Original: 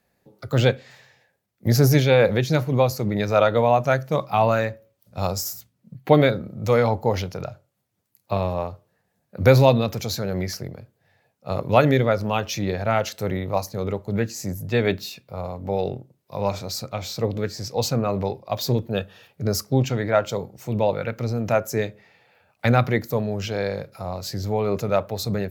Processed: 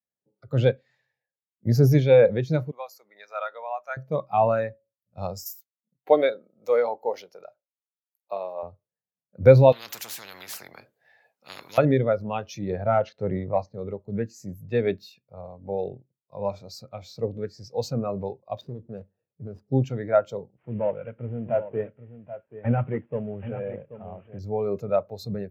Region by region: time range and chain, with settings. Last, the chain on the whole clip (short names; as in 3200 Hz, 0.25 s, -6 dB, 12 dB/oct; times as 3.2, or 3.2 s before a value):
2.71–3.97 HPF 1100 Hz + bell 3100 Hz -4.5 dB 1.2 oct
5.46–8.63 HPF 390 Hz + high shelf 7200 Hz +8 dB
9.72–11.78 HPF 750 Hz 6 dB/oct + de-esser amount 30% + spectral compressor 10:1
12.7–13.74 sample leveller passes 1 + air absorption 160 m
18.61–19.68 median filter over 41 samples + compressor 5:1, threshold -24 dBFS
20.56–24.39 CVSD 16 kbps + echo 0.782 s -9 dB
whole clip: low shelf 82 Hz -8 dB; spectral expander 1.5:1